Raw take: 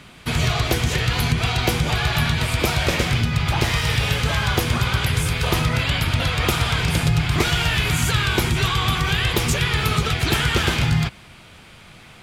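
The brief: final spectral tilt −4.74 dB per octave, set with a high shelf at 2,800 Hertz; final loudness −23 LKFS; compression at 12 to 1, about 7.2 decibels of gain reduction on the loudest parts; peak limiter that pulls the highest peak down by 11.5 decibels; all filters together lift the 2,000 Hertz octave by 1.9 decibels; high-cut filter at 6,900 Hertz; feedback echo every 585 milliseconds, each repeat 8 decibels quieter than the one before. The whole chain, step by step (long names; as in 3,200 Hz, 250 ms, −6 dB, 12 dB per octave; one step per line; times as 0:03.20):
low-pass filter 6,900 Hz
parametric band 2,000 Hz +4 dB
high-shelf EQ 2,800 Hz −3.5 dB
downward compressor 12 to 1, threshold −22 dBFS
brickwall limiter −23.5 dBFS
repeating echo 585 ms, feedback 40%, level −8 dB
level +8 dB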